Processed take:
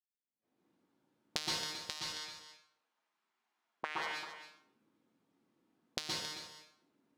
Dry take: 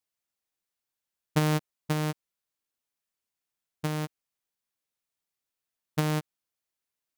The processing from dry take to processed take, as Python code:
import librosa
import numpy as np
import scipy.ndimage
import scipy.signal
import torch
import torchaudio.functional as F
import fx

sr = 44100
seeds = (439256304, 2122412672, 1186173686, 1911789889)

y = fx.recorder_agc(x, sr, target_db=-23.0, rise_db_per_s=64.0, max_gain_db=30)
y = fx.weighting(y, sr, curve='A', at=(2.0, 4.01))
y = fx.noise_reduce_blind(y, sr, reduce_db=14)
y = fx.low_shelf(y, sr, hz=140.0, db=-10.5)
y = fx.auto_wah(y, sr, base_hz=200.0, top_hz=4500.0, q=2.2, full_db=-28.5, direction='up')
y = y + 10.0 ** (-11.5 / 20.0) * np.pad(y, (int(270 * sr / 1000.0), 0))[:len(y)]
y = fx.rev_plate(y, sr, seeds[0], rt60_s=0.69, hf_ratio=0.75, predelay_ms=110, drr_db=-3.0)
y = y * librosa.db_to_amplitude(-1.0)